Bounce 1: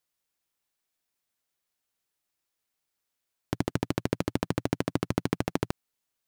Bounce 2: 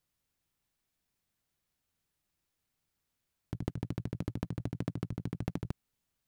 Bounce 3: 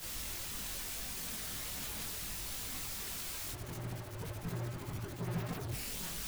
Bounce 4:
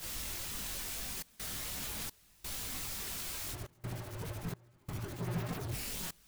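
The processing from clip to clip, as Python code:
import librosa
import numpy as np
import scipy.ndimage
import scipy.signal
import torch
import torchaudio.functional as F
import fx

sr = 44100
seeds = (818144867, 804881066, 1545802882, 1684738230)

y1 = fx.bass_treble(x, sr, bass_db=13, treble_db=-2)
y1 = fx.over_compress(y1, sr, threshold_db=-27.0, ratio=-1.0)
y1 = y1 * 10.0 ** (-7.5 / 20.0)
y2 = np.sign(y1) * np.sqrt(np.mean(np.square(y1)))
y2 = fx.chorus_voices(y2, sr, voices=4, hz=0.68, base_ms=21, depth_ms=2.8, mix_pct=55)
y2 = fx.band_widen(y2, sr, depth_pct=70)
y2 = y2 * 10.0 ** (5.5 / 20.0)
y3 = fx.step_gate(y2, sr, bpm=86, pattern='xxxxxxx.xxxx..', floor_db=-24.0, edge_ms=4.5)
y3 = y3 * 10.0 ** (1.0 / 20.0)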